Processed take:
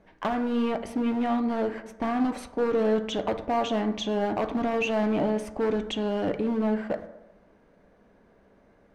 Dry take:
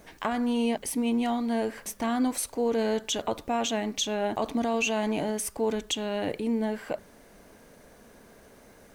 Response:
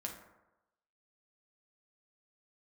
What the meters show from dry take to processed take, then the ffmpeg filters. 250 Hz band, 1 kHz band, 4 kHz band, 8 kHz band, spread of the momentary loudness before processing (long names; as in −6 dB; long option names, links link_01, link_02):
+1.5 dB, +1.5 dB, −4.0 dB, −14.5 dB, 5 LU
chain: -filter_complex "[0:a]aemphasis=mode=reproduction:type=50fm,agate=range=-10dB:threshold=-41dB:ratio=16:detection=peak,highshelf=frequency=3000:gain=-7.5,asoftclip=type=hard:threshold=-24.5dB,asplit=2[link_01][link_02];[1:a]atrim=start_sample=2205,asetrate=41895,aresample=44100,lowpass=5700[link_03];[link_02][link_03]afir=irnorm=-1:irlink=0,volume=-1.5dB[link_04];[link_01][link_04]amix=inputs=2:normalize=0"